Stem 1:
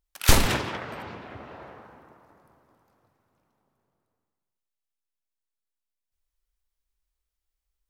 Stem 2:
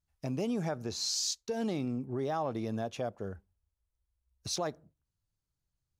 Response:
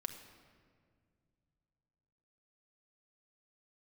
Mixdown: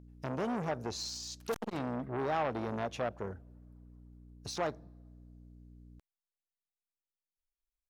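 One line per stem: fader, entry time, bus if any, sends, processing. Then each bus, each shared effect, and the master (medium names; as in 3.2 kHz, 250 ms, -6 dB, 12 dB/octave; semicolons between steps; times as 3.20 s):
-13.5 dB, 1.25 s, no send, reverb removal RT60 0.8 s; bass shelf 140 Hz +11.5 dB; auto duck -7 dB, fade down 0.55 s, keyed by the second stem
+3.0 dB, 0.00 s, send -22 dB, de-esser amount 90%; tilt EQ -1.5 dB/octave; hum 60 Hz, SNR 15 dB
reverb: on, RT60 2.0 s, pre-delay 5 ms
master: bass shelf 260 Hz -8.5 dB; transformer saturation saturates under 1.1 kHz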